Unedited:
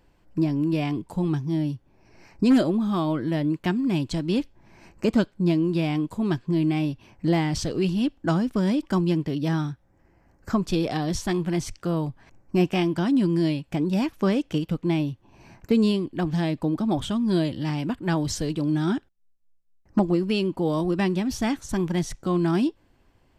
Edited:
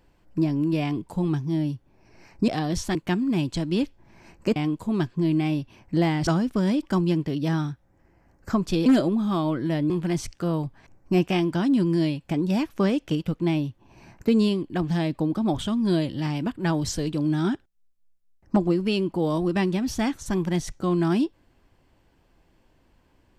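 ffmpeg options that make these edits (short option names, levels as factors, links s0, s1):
-filter_complex "[0:a]asplit=7[s0][s1][s2][s3][s4][s5][s6];[s0]atrim=end=2.482[s7];[s1]atrim=start=10.858:end=11.332[s8];[s2]atrim=start=3.518:end=5.132[s9];[s3]atrim=start=5.868:end=7.582[s10];[s4]atrim=start=8.268:end=10.862[s11];[s5]atrim=start=2.478:end=3.522[s12];[s6]atrim=start=11.328[s13];[s7][s8]acrossfade=d=0.004:c1=hsin:c2=hsin[s14];[s14][s9]acrossfade=d=0.004:c1=hsin:c2=hsin[s15];[s15][s10]acrossfade=d=0.004:c1=hsin:c2=hsin[s16];[s16][s11]acrossfade=d=0.004:c1=hsin:c2=hsin[s17];[s17][s12]acrossfade=d=0.004:c1=hsin:c2=hsin[s18];[s18][s13]acrossfade=d=0.004:c1=hsin:c2=hsin"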